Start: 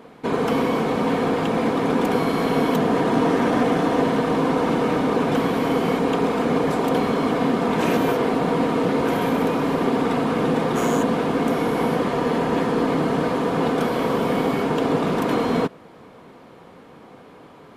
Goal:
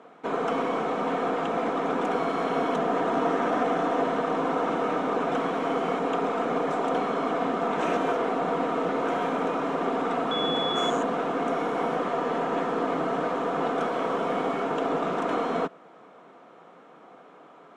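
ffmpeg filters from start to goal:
-filter_complex "[0:a]asettb=1/sr,asplit=3[s0][s1][s2];[s0]atrim=end=10.314[s3];[s1]atrim=start=10.31:end=10.9,asetpts=PTS-STARTPTS,afade=t=in:d=0.004:c=qsin,afade=t=out:st=0.586:d=0.004:c=qsin,aeval=exprs='val(0)+0.0891*sin(2*PI*3400*n/s)':c=same[s4];[s2]atrim=start=10.896[s5];[s3][s4]acrossfade=d=0.004:c1=hsin:c2=qsin[s6];[s6][s5]acrossfade=d=0.004:c1=qsin:c2=hsin,highpass=f=180:w=0.5412,highpass=f=180:w=1.3066,equalizer=f=230:t=q:w=4:g=-5,equalizer=f=690:t=q:w=4:g=7,equalizer=f=1300:t=q:w=4:g=8,equalizer=f=4600:t=q:w=4:g=-8,lowpass=f=8000:w=0.5412,lowpass=f=8000:w=1.3066,aeval=exprs='0.501*(cos(1*acos(clip(val(0)/0.501,-1,1)))-cos(1*PI/2))+0.00282*(cos(8*acos(clip(val(0)/0.501,-1,1)))-cos(8*PI/2))':c=same,volume=0.447"

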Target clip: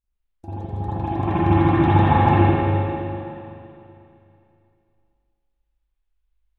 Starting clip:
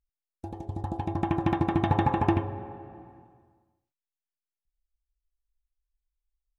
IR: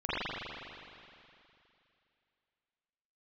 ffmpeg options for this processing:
-filter_complex "[1:a]atrim=start_sample=2205[s0];[0:a][s0]afir=irnorm=-1:irlink=0,volume=0.841"

